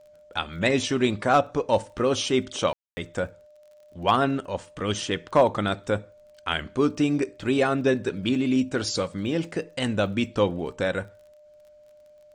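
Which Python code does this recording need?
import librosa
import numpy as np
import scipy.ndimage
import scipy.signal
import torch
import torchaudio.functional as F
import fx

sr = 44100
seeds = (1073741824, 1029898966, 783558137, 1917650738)

y = fx.fix_declip(x, sr, threshold_db=-9.5)
y = fx.fix_declick_ar(y, sr, threshold=6.5)
y = fx.notch(y, sr, hz=600.0, q=30.0)
y = fx.fix_ambience(y, sr, seeds[0], print_start_s=11.83, print_end_s=12.33, start_s=2.73, end_s=2.97)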